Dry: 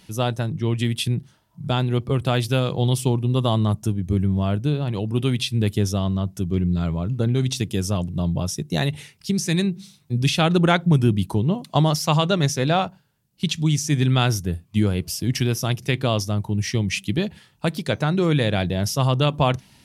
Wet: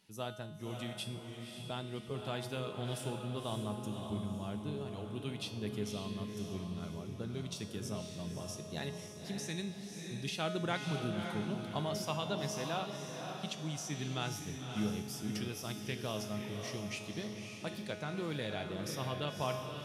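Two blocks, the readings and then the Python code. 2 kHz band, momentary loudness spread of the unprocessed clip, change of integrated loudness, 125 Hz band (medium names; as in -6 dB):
-14.5 dB, 7 LU, -17.5 dB, -20.5 dB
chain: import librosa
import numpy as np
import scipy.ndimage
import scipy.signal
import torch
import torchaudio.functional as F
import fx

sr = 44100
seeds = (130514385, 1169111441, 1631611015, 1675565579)

p1 = fx.low_shelf(x, sr, hz=130.0, db=-10.0)
p2 = fx.comb_fb(p1, sr, f0_hz=210.0, decay_s=0.96, harmonics='all', damping=0.0, mix_pct=80)
p3 = p2 + fx.echo_diffused(p2, sr, ms=558, feedback_pct=46, wet_db=-5.0, dry=0)
y = p3 * 10.0 ** (-4.0 / 20.0)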